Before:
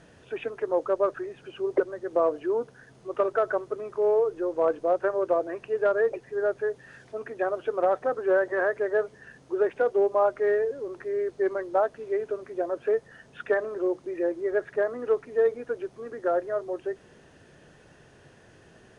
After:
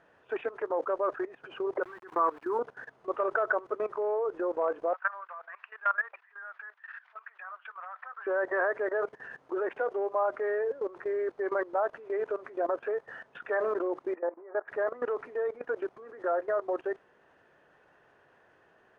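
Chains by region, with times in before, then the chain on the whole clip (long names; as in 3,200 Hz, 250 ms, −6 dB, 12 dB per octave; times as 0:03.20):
0:01.83–0:02.59: phaser with its sweep stopped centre 1,400 Hz, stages 4 + centre clipping without the shift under −48.5 dBFS
0:04.93–0:08.27: high-pass filter 1,200 Hz 24 dB per octave + high-frequency loss of the air 270 metres
0:14.15–0:14.68: resonant band-pass 910 Hz, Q 1.8 + high-frequency loss of the air 430 metres
whole clip: bass and treble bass −9 dB, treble −12 dB; output level in coarse steps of 18 dB; parametric band 1,100 Hz +9.5 dB 1.9 octaves; level +3.5 dB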